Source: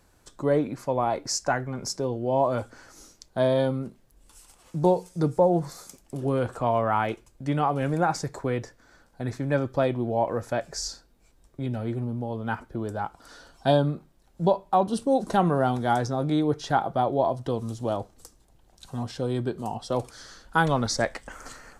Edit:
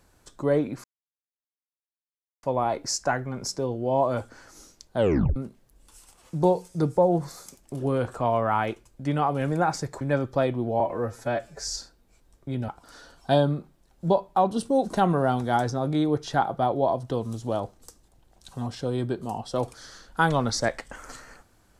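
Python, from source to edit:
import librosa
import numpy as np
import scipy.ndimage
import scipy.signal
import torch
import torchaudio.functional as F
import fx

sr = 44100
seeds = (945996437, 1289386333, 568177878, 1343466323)

y = fx.edit(x, sr, fx.insert_silence(at_s=0.84, length_s=1.59),
    fx.tape_stop(start_s=3.38, length_s=0.39),
    fx.cut(start_s=8.42, length_s=1.0),
    fx.stretch_span(start_s=10.21, length_s=0.59, factor=1.5),
    fx.cut(start_s=11.8, length_s=1.25), tone=tone)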